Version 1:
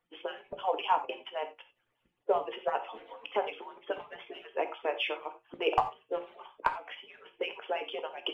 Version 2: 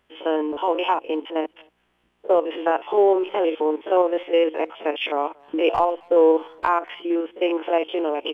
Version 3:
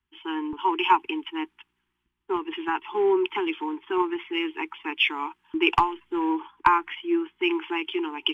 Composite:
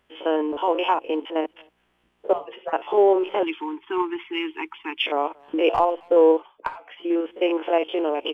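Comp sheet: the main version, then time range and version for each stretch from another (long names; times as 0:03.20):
2
0:02.33–0:02.73: punch in from 1
0:03.43–0:05.02: punch in from 3
0:06.38–0:07.01: punch in from 1, crossfade 0.10 s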